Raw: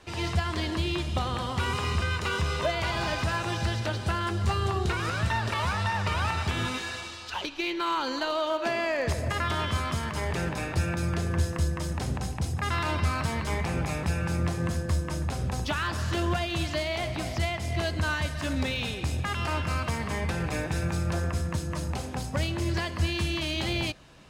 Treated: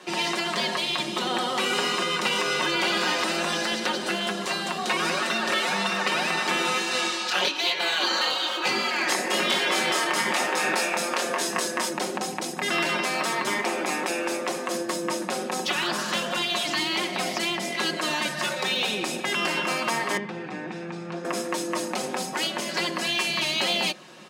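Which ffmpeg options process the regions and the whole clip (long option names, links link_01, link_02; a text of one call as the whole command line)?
ffmpeg -i in.wav -filter_complex "[0:a]asettb=1/sr,asplit=3[link_01][link_02][link_03];[link_01]atrim=end=6.914[link_04];[link_02]atrim=start=6.91:end=11.89,asetpts=PTS-STARTPTS,afade=type=in:duration=0.004:curve=qsin,afade=type=out:start_time=4.976:duration=0.004:curve=qsin,acontrast=81,flanger=delay=19.5:depth=6.6:speed=1.1[link_05];[link_03]atrim=start=11.886[link_06];[link_04][link_05]acrossfade=duration=0.004:curve1=hsin:curve2=qsin[link_07];[link_07][link_06]acrossfade=duration=0.004:curve1=qsin:curve2=hsin,asettb=1/sr,asplit=3[link_08][link_09][link_10];[link_08]atrim=end=20.174[link_11];[link_09]atrim=start=20.17:end=21.25,asetpts=PTS-STARTPTS,afade=type=in:duration=0.004:curve=qsin,afade=type=out:start_time=1.076:duration=0.004:curve=qsin,lowpass=4200,bandreject=frequency=580:width=6.2,acrossover=split=550|2500[link_12][link_13][link_14];[link_12]acompressor=threshold=-36dB:ratio=4[link_15];[link_13]acompressor=threshold=-48dB:ratio=4[link_16];[link_14]acompressor=threshold=-59dB:ratio=4[link_17];[link_15][link_16][link_17]amix=inputs=3:normalize=0[link_18];[link_10]atrim=start=21.246[link_19];[link_11][link_18]acrossfade=duration=0.004:curve1=hsin:curve2=qsin[link_20];[link_20][link_19]acrossfade=duration=0.004:curve1=qsin:curve2=hsin,afftfilt=real='re*lt(hypot(re,im),0.126)':imag='im*lt(hypot(re,im),0.126)':win_size=1024:overlap=0.75,highpass=frequency=200:width=0.5412,highpass=frequency=200:width=1.3066,aecho=1:1:5.5:0.58,volume=7.5dB" out.wav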